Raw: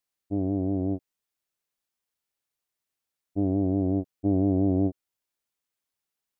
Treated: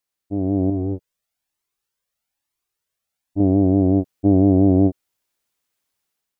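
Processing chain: AGC gain up to 7 dB; 0.7–3.4 cascading flanger rising 1.1 Hz; gain +2 dB

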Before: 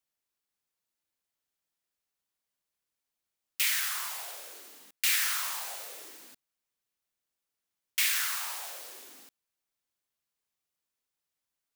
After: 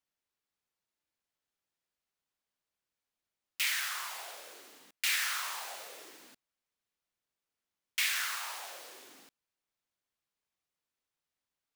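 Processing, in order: high shelf 6900 Hz -9.5 dB

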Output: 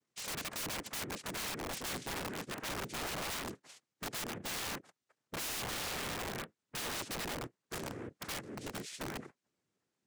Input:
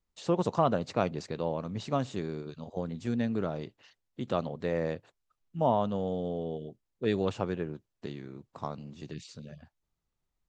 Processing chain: envelope flanger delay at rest 11.2 ms, full sweep at -27 dBFS; thirty-one-band EQ 250 Hz -5 dB, 630 Hz +9 dB, 1600 Hz -11 dB, 4000 Hz +5 dB; noise vocoder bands 3; speed mistake 24 fps film run at 25 fps; compressor 2:1, threshold -45 dBFS, peak gain reduction 15 dB; low shelf 480 Hz +4 dB; wrapped overs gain 39 dB; gain +5 dB

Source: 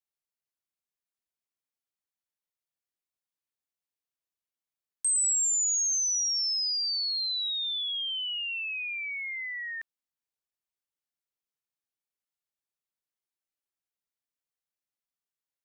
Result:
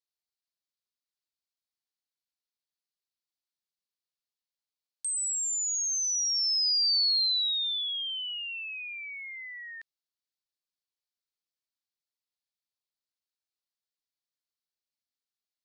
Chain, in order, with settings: bell 4400 Hz +13 dB 0.94 oct; gain -8 dB

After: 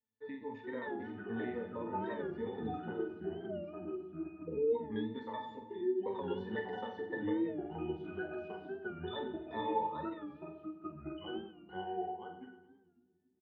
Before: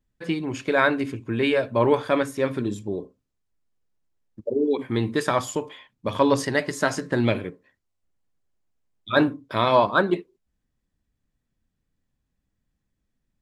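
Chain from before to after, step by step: trilling pitch shifter -2.5 st, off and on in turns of 0.205 s; three-band isolator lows -22 dB, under 310 Hz, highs -23 dB, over 4500 Hz; compressor, threshold -26 dBFS, peak gain reduction 11.5 dB; octave resonator A, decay 0.26 s; split-band echo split 350 Hz, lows 0.233 s, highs 90 ms, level -12.5 dB; echoes that change speed 0.383 s, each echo -3 st, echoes 2; doubler 47 ms -7 dB; on a send at -12 dB: reverb, pre-delay 3 ms; on the sum: record warp 45 rpm, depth 100 cents; gain +7 dB

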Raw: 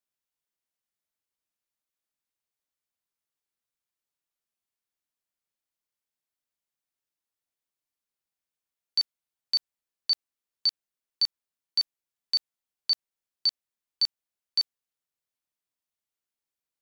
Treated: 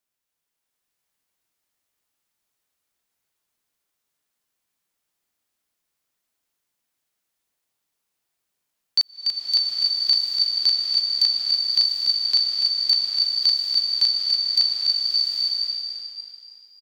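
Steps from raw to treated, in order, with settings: frequency-shifting echo 0.289 s, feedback 46%, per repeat +56 Hz, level -4.5 dB; crackling interface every 0.21 s, samples 128, repeat, from 0.71; bloom reverb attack 0.8 s, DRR -1.5 dB; gain +6 dB

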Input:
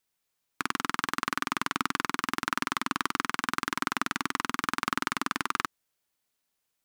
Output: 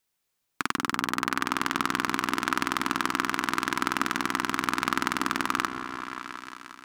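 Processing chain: repeats that get brighter 0.177 s, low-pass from 400 Hz, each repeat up 1 oct, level -3 dB; gain +2 dB

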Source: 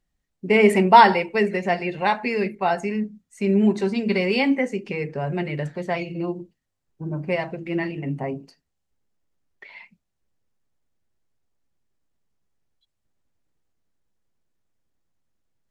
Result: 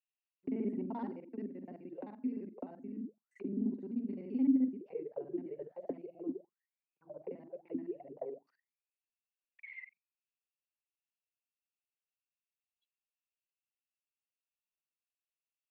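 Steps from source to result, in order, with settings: local time reversal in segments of 43 ms; low shelf 69 Hz -11 dB; auto-wah 260–2700 Hz, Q 16, down, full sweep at -22.5 dBFS

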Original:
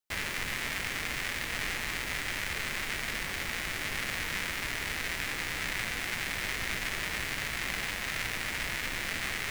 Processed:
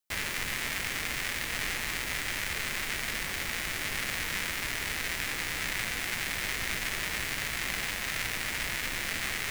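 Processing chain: high shelf 5300 Hz +5 dB

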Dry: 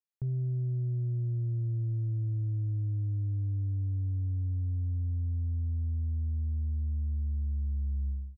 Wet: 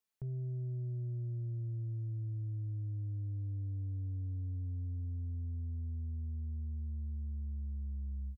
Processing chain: comb 4.6 ms, depth 39%; limiter -40 dBFS, peak gain reduction 12 dB; gain +4.5 dB

